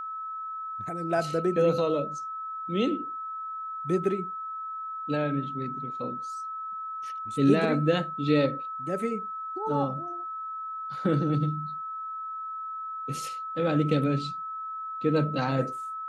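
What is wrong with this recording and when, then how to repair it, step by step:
whine 1.3 kHz -33 dBFS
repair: band-stop 1.3 kHz, Q 30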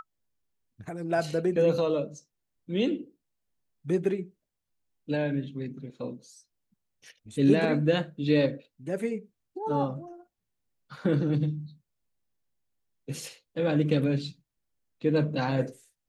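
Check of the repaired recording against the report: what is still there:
nothing left

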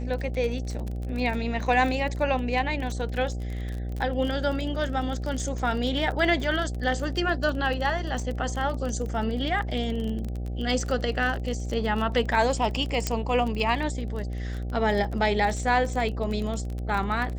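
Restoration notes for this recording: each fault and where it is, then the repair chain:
buzz 60 Hz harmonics 13 -31 dBFS
crackle 28 per s -30 dBFS
13.07 s: pop -10 dBFS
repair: de-click; de-hum 60 Hz, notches 13

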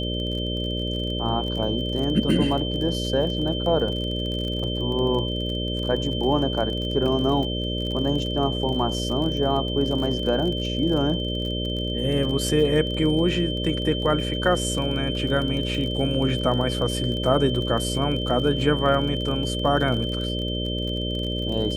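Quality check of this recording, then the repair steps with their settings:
buzz 60 Hz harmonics 10 -28 dBFS
crackle 35 per s -30 dBFS
whine 3.1 kHz -30 dBFS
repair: de-click; band-stop 3.1 kHz, Q 30; de-hum 60 Hz, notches 10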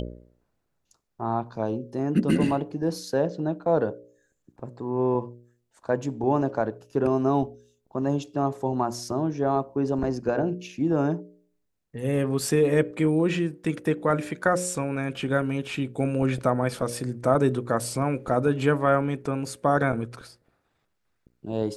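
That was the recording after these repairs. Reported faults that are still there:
nothing left

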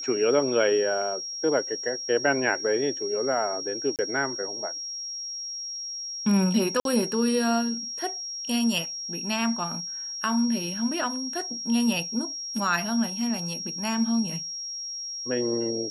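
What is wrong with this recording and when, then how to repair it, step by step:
whine 5.6 kHz -32 dBFS
3.96–3.99 s: dropout 28 ms
6.80–6.85 s: dropout 52 ms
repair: band-stop 5.6 kHz, Q 30; interpolate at 3.96 s, 28 ms; interpolate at 6.80 s, 52 ms

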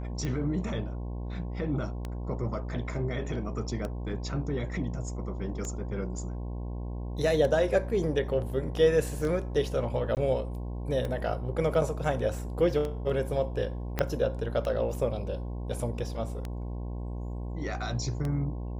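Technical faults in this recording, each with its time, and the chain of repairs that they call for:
buzz 60 Hz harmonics 18 -35 dBFS
tick 33 1/3 rpm -21 dBFS
10.15–10.17 s: dropout 18 ms
13.99 s: pop -13 dBFS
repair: de-click; de-hum 60 Hz, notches 18; interpolate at 10.15 s, 18 ms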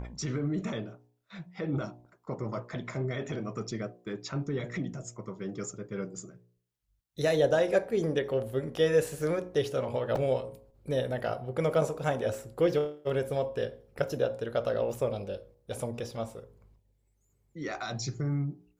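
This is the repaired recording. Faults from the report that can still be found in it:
13.99 s: pop

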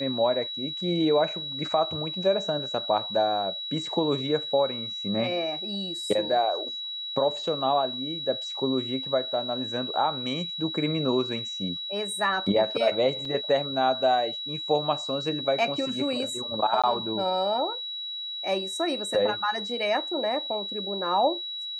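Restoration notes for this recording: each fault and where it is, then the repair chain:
whine 3.9 kHz -32 dBFS
13.25 s: dropout 3.9 ms
16.82–16.84 s: dropout 16 ms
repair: band-stop 3.9 kHz, Q 30; interpolate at 13.25 s, 3.9 ms; interpolate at 16.82 s, 16 ms

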